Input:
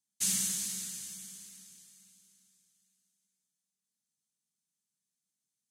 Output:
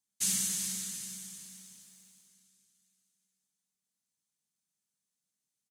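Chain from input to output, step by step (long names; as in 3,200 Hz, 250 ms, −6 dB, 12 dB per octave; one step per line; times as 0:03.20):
slap from a distant wall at 52 metres, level −9 dB
feedback echo at a low word length 390 ms, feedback 35%, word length 9 bits, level −14.5 dB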